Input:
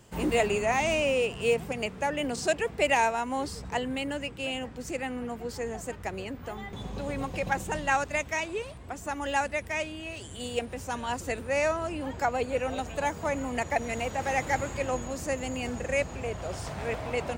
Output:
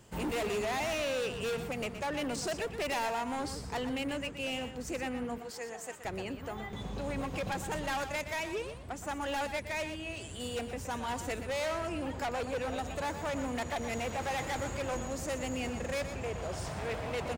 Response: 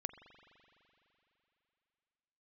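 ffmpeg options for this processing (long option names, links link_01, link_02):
-filter_complex "[0:a]asettb=1/sr,asplit=3[link_01][link_02][link_03];[link_01]atrim=end=5.384[link_04];[link_02]atrim=start=5.38:end=6.05,asetpts=PTS-STARTPTS,afade=type=in:duration=0.004:curve=qsin,afade=type=out:start_time=0.666:duration=0.004:curve=qsin,highpass=frequency=810:poles=1[link_05];[link_03]atrim=start=6.046[link_06];[link_04][link_05]acrossfade=duration=0.004:curve1=hsin:curve2=qsin[link_07];[link_07][link_06]acrossfade=duration=0.004:curve1=qsin:curve2=hsin,asoftclip=type=hard:threshold=-29.5dB,aecho=1:1:121:0.316,volume=-2dB"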